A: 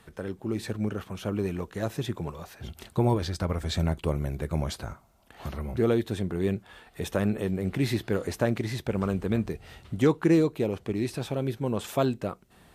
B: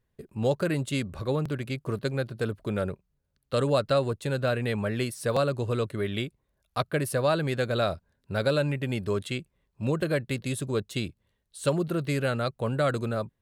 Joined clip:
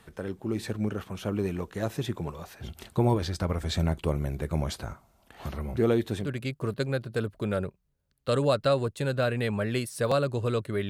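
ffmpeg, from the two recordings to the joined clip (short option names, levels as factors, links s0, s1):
-filter_complex "[0:a]apad=whole_dur=10.89,atrim=end=10.89,atrim=end=6.3,asetpts=PTS-STARTPTS[s0];[1:a]atrim=start=1.43:end=6.14,asetpts=PTS-STARTPTS[s1];[s0][s1]acrossfade=d=0.12:c1=tri:c2=tri"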